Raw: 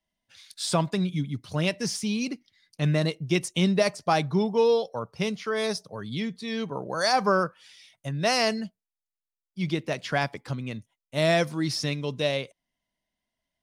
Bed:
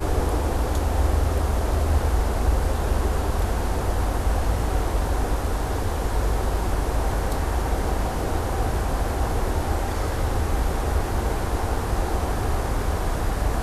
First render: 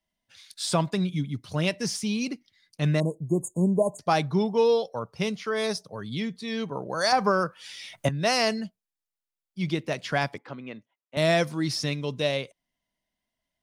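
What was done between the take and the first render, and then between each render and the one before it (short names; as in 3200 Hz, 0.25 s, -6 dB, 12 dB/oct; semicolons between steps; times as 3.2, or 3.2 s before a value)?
3–3.99 brick-wall FIR band-stop 1100–6500 Hz; 7.12–8.09 three-band squash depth 100%; 10.38–11.17 BPF 280–2500 Hz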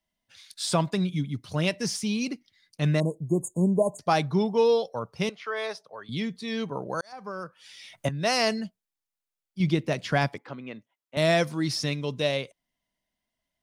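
5.29–6.09 three-band isolator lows -21 dB, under 450 Hz, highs -14 dB, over 3500 Hz; 7.01–8.47 fade in; 9.6–10.3 low shelf 340 Hz +6 dB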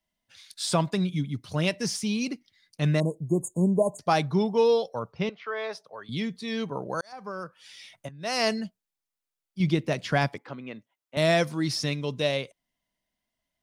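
5.12–5.73 air absorption 190 m; 7.81–8.46 dip -13.5 dB, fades 0.28 s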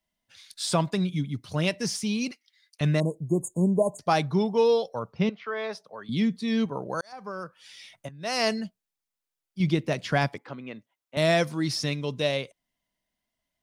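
2.31–2.81 HPF 1300 Hz; 5.08–6.66 bell 220 Hz +7.5 dB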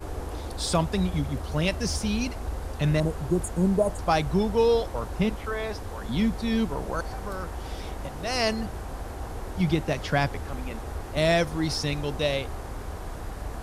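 add bed -11.5 dB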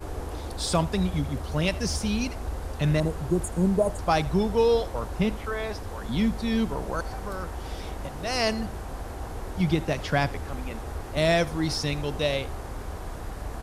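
echo 81 ms -20.5 dB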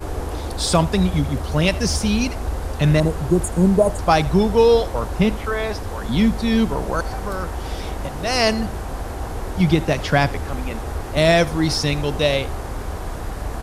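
gain +7.5 dB; limiter -3 dBFS, peak gain reduction 1.5 dB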